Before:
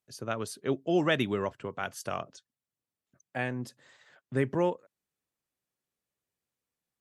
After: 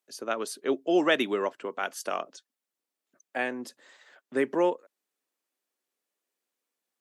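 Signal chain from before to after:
high-pass filter 260 Hz 24 dB per octave
level +3.5 dB

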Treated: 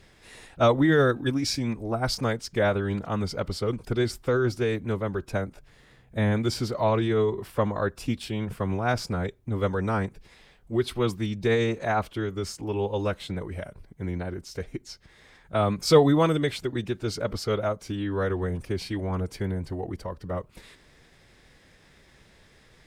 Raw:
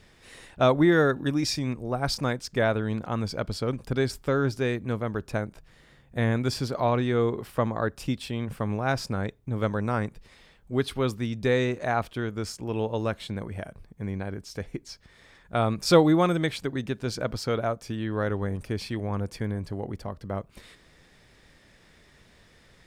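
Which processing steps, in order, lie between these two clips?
phase-vocoder pitch shift with formants kept −1.5 semitones
level +1 dB

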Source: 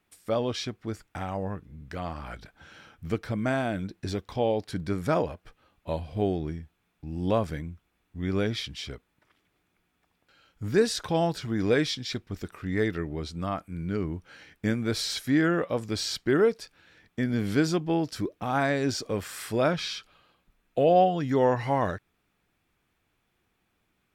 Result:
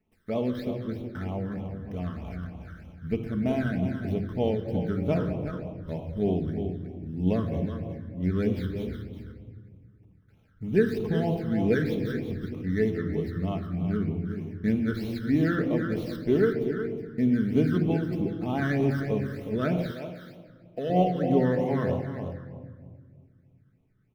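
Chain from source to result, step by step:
running median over 15 samples
parametric band 7,100 Hz −10 dB 1.1 octaves
single-tap delay 368 ms −9 dB
rectangular room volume 3,100 cubic metres, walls mixed, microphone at 1.5 metres
all-pass phaser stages 12, 3.2 Hz, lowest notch 760–1,600 Hz
0:19.91–0:20.90: low-shelf EQ 380 Hz −10 dB

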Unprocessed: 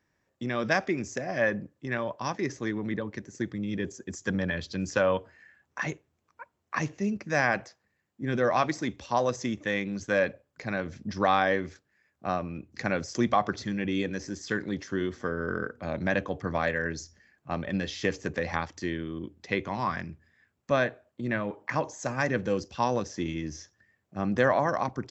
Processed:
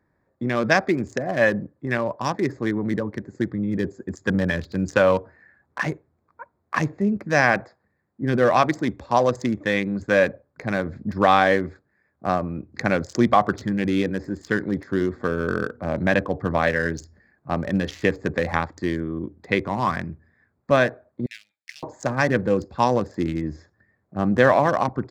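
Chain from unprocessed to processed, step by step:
adaptive Wiener filter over 15 samples
0:21.26–0:21.83: inverse Chebyshev high-pass filter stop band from 1,100 Hz, stop band 50 dB
level +7.5 dB

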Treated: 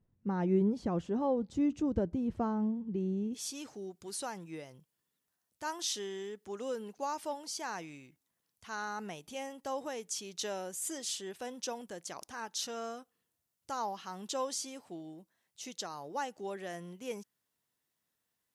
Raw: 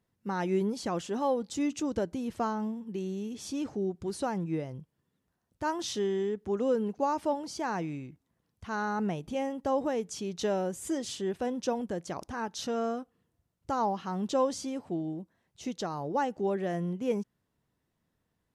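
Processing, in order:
spectral tilt −3.5 dB per octave, from 0:03.33 +3.5 dB per octave
level −6 dB

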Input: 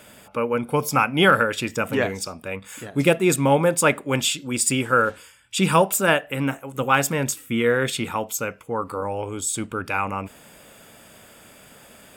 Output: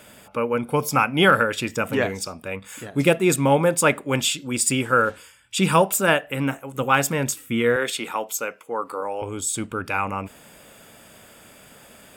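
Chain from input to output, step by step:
0:07.76–0:09.22: high-pass filter 340 Hz 12 dB per octave

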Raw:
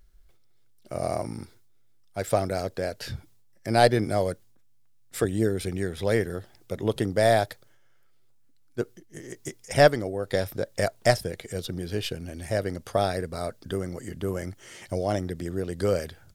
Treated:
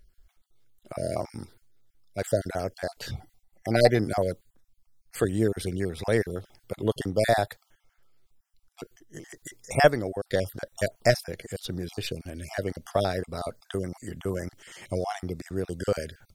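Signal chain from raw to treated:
time-frequency cells dropped at random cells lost 28%
0:03.13–0:03.96: hollow resonant body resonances 750/2,000 Hz, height 17 dB → 13 dB

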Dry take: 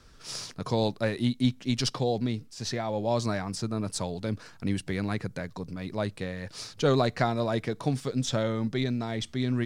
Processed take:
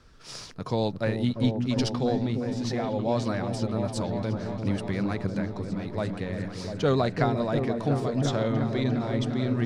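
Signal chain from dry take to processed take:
high-shelf EQ 5,400 Hz −8.5 dB
echo whose low-pass opens from repeat to repeat 349 ms, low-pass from 400 Hz, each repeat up 1 octave, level −3 dB

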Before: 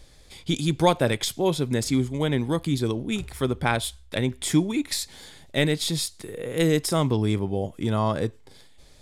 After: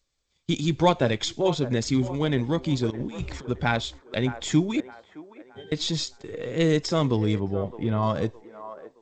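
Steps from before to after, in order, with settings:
spectral magnitudes quantised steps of 15 dB
0:02.90–0:03.49: compressor whose output falls as the input rises −32 dBFS, ratio −0.5
noise gate −40 dBFS, range −28 dB
0:04.80–0:05.72: resonances in every octave G, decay 0.26 s
0:07.40–0:08.03: high-frequency loss of the air 290 metres
on a send: delay with a band-pass on its return 616 ms, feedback 38%, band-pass 840 Hz, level −12 dB
on the sum: G.722 64 kbit/s 16,000 Hz

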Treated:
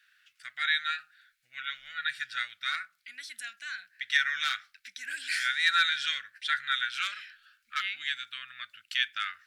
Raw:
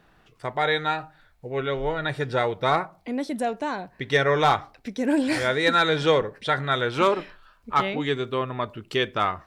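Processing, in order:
elliptic high-pass filter 1,500 Hz, stop band 40 dB

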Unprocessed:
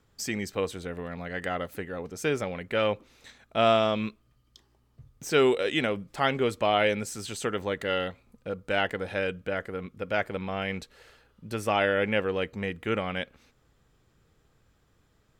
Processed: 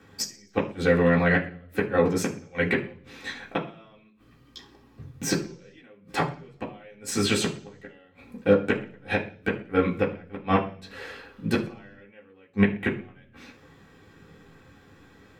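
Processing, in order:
gate with flip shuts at −22 dBFS, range −41 dB
convolution reverb RT60 0.45 s, pre-delay 3 ms, DRR −5 dB
level +5 dB

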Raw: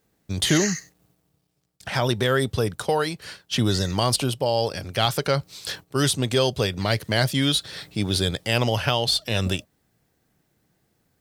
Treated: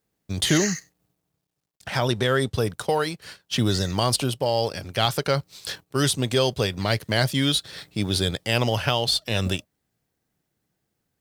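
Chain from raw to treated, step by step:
mu-law and A-law mismatch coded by A
0:02.05–0:02.54: low-pass filter 11,000 Hz 12 dB per octave

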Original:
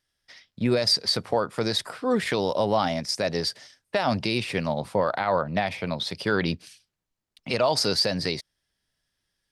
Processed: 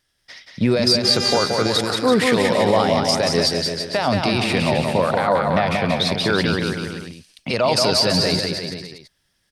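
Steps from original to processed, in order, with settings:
brickwall limiter −17.5 dBFS, peak gain reduction 5.5 dB
0:01.03–0:01.43: hum with harmonics 400 Hz, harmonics 18, −40 dBFS −2 dB per octave
bouncing-ball delay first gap 180 ms, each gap 0.85×, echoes 5
level +8.5 dB

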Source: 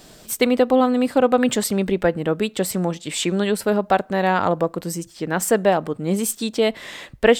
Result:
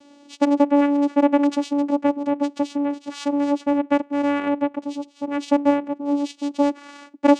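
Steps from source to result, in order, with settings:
channel vocoder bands 4, saw 286 Hz

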